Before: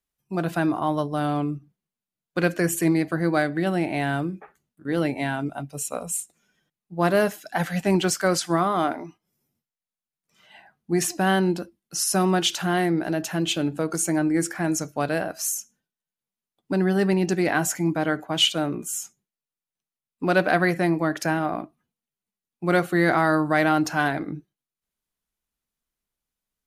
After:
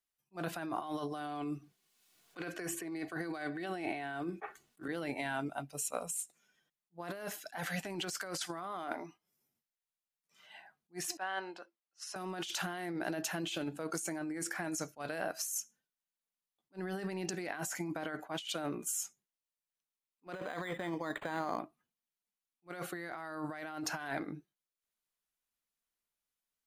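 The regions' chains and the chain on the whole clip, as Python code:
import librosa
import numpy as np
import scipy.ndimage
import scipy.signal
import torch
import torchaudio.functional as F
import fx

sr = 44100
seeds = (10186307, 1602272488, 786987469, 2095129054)

y = fx.chain(x, sr, fx.high_shelf(hz=9000.0, db=-7.0),
    fx.comb(ms=2.7, depth=0.38),
    fx.band_squash(depth_pct=100), at=(0.8, 4.88))
y = fx.chain(y, sr, fx.highpass(hz=740.0, slope=12),
    fx.spacing_loss(db_at_10k=23), at=(11.17, 12.16))
y = fx.chain(y, sr, fx.ripple_eq(per_octave=0.96, db=6),
    fx.resample_linear(factor=8), at=(20.32, 21.59))
y = fx.low_shelf(y, sr, hz=340.0, db=-11.0)
y = fx.over_compress(y, sr, threshold_db=-31.0, ratio=-1.0)
y = fx.attack_slew(y, sr, db_per_s=460.0)
y = y * librosa.db_to_amplitude(-8.0)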